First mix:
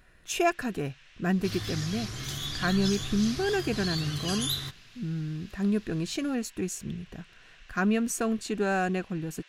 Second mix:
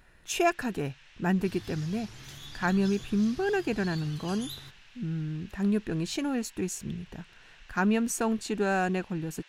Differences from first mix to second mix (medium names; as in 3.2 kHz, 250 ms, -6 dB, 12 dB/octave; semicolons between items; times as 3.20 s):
second sound -11.0 dB; master: remove Butterworth band-stop 880 Hz, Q 7